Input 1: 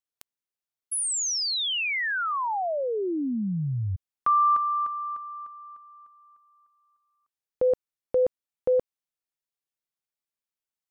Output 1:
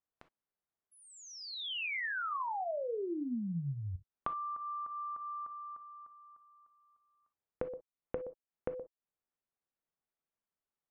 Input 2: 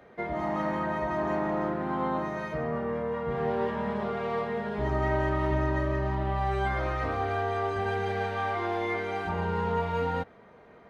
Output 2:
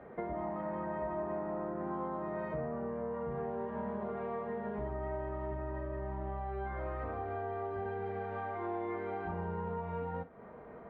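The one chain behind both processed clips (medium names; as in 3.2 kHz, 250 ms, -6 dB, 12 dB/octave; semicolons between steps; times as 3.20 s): low-pass 1.4 kHz 12 dB/octave; compression 10:1, threshold -39 dBFS; gated-style reverb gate 80 ms flat, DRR 9.5 dB; trim +3 dB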